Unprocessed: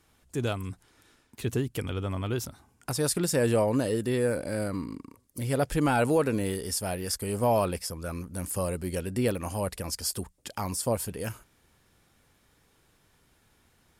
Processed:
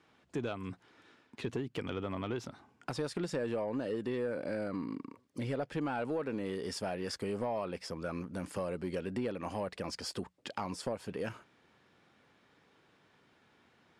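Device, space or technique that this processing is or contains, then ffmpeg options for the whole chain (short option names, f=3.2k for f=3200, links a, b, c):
AM radio: -af "highpass=170,lowpass=3.5k,acompressor=threshold=-33dB:ratio=5,asoftclip=type=tanh:threshold=-26dB,volume=1.5dB"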